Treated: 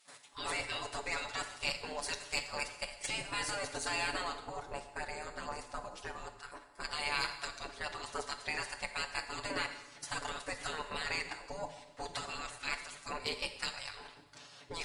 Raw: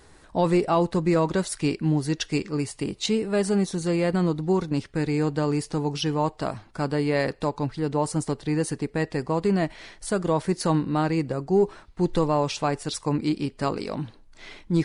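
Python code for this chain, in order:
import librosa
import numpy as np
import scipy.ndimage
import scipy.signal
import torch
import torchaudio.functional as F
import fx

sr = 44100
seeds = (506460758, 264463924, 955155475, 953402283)

y = fx.level_steps(x, sr, step_db=13)
y = fx.peak_eq(y, sr, hz=3900.0, db=-12.0, octaves=2.9, at=(4.39, 6.83), fade=0.02)
y = fx.over_compress(y, sr, threshold_db=-26.0, ratio=-1.0)
y = fx.spec_gate(y, sr, threshold_db=-20, keep='weak')
y = fx.tube_stage(y, sr, drive_db=26.0, bias=0.2)
y = y + 0.8 * np.pad(y, (int(7.0 * sr / 1000.0), 0))[:len(y)]
y = fx.rev_plate(y, sr, seeds[0], rt60_s=1.1, hf_ratio=0.95, predelay_ms=0, drr_db=7.5)
y = y * 10.0 ** (4.5 / 20.0)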